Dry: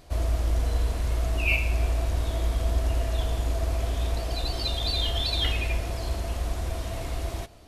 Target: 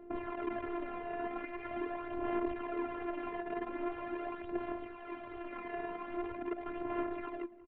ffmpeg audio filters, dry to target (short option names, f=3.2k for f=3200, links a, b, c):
-af "aemphasis=mode=production:type=cd,bandreject=f=60:t=h:w=6,bandreject=f=120:t=h:w=6,bandreject=f=180:t=h:w=6,bandreject=f=240:t=h:w=6,bandreject=f=300:t=h:w=6,alimiter=limit=-21dB:level=0:latency=1:release=41,tremolo=f=1:d=0.51,aeval=exprs='(mod(37.6*val(0)+1,2)-1)/37.6':c=same,adynamicsmooth=sensitivity=2:basefreq=610,afftfilt=real='hypot(re,im)*cos(PI*b)':imag='0':win_size=512:overlap=0.75,aphaser=in_gain=1:out_gain=1:delay=3.9:decay=0.5:speed=0.43:type=sinusoidal,aecho=1:1:183|366|549:0.1|0.043|0.0185,highpass=f=530:t=q:w=0.5412,highpass=f=530:t=q:w=1.307,lowpass=f=3.1k:t=q:w=0.5176,lowpass=f=3.1k:t=q:w=0.7071,lowpass=f=3.1k:t=q:w=1.932,afreqshift=-340,volume=12dB"